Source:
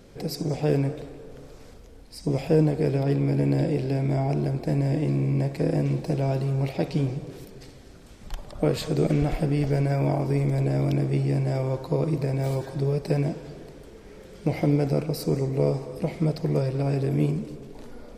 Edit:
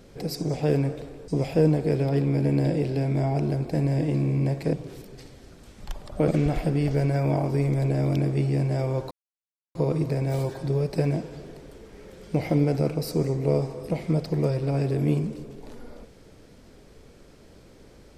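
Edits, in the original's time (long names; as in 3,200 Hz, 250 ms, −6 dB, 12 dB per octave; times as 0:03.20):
0:01.28–0:02.22: remove
0:05.67–0:07.16: remove
0:08.71–0:09.04: remove
0:11.87: splice in silence 0.64 s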